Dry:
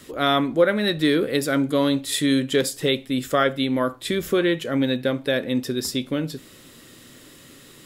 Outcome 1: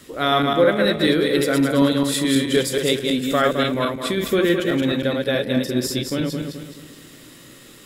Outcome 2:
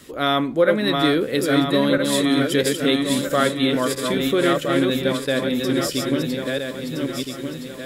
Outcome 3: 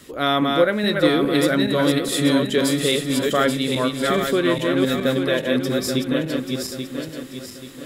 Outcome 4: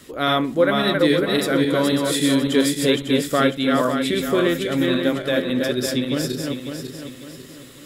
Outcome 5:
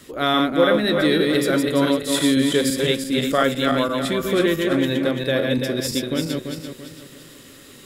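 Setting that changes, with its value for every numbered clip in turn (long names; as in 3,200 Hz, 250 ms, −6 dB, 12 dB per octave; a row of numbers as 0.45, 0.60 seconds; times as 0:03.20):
feedback delay that plays each chunk backwards, delay time: 107, 659, 417, 275, 169 milliseconds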